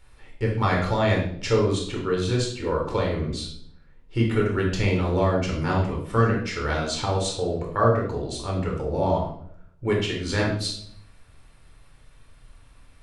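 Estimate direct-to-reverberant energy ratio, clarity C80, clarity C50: -2.0 dB, 8.0 dB, 4.0 dB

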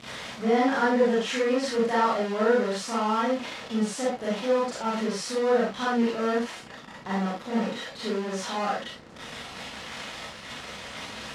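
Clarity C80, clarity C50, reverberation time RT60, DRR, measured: 6.5 dB, 0.0 dB, no single decay rate, -9.0 dB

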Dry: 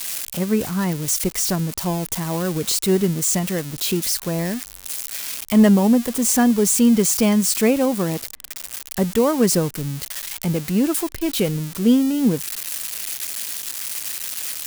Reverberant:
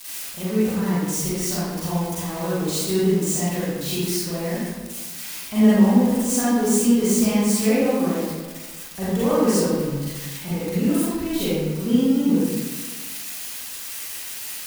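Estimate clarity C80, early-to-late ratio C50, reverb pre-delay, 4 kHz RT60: -1.0 dB, -5.0 dB, 36 ms, 0.80 s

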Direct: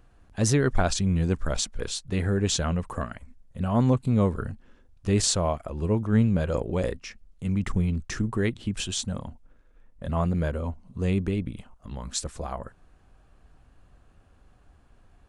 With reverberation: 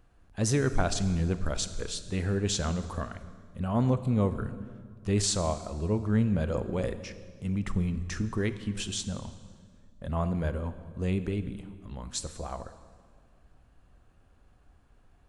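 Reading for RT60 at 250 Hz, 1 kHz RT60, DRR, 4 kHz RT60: 2.1 s, 1.7 s, 11.5 dB, 1.5 s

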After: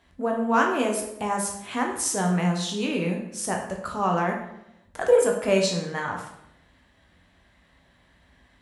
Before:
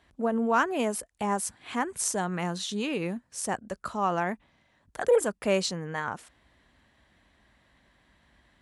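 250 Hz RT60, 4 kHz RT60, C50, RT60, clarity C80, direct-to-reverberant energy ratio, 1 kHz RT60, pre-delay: 0.95 s, 0.60 s, 5.5 dB, 0.80 s, 8.5 dB, 1.0 dB, 0.80 s, 9 ms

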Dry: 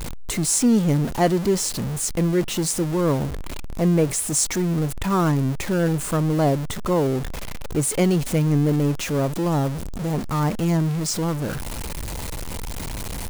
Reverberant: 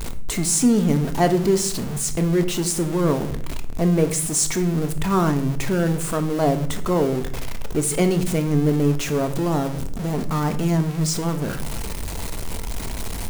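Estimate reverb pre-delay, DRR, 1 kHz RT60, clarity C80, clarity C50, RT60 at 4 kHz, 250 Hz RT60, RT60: 3 ms, 7.5 dB, 0.50 s, 16.5 dB, 13.0 dB, 0.40 s, 0.85 s, 0.55 s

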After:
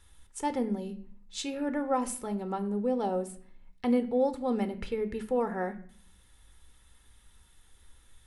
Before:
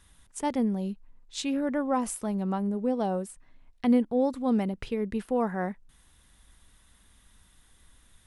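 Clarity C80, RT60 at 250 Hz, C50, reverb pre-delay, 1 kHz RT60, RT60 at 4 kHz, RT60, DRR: 17.5 dB, 0.80 s, 14.5 dB, 4 ms, 0.50 s, 0.45 s, 0.55 s, 9.0 dB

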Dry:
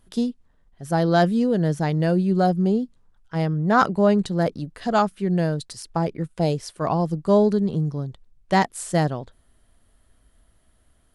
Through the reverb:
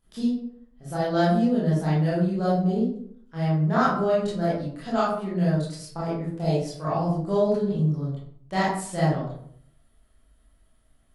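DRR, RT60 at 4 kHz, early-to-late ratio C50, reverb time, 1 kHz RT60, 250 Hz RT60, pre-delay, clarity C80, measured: -9.5 dB, 0.40 s, 0.5 dB, 0.65 s, 0.60 s, 0.75 s, 20 ms, 6.0 dB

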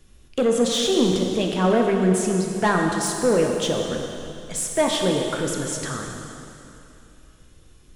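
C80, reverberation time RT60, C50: 3.0 dB, 2.9 s, 2.5 dB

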